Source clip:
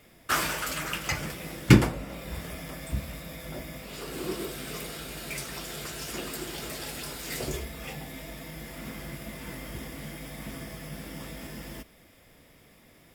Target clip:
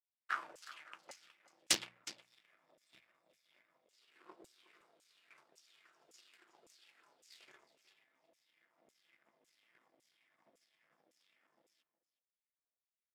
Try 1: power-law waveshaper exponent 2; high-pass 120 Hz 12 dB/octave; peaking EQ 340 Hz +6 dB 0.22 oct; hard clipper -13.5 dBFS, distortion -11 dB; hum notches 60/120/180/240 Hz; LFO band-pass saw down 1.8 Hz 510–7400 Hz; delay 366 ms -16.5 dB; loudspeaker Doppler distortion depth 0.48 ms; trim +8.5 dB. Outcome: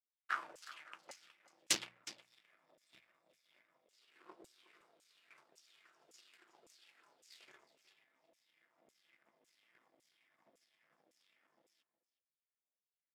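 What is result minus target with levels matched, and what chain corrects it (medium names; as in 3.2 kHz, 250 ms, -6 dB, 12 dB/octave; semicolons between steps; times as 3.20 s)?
hard clipper: distortion +17 dB
power-law waveshaper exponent 2; high-pass 120 Hz 12 dB/octave; peaking EQ 340 Hz +6 dB 0.22 oct; hard clipper -7 dBFS, distortion -29 dB; hum notches 60/120/180/240 Hz; LFO band-pass saw down 1.8 Hz 510–7400 Hz; delay 366 ms -16.5 dB; loudspeaker Doppler distortion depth 0.48 ms; trim +8.5 dB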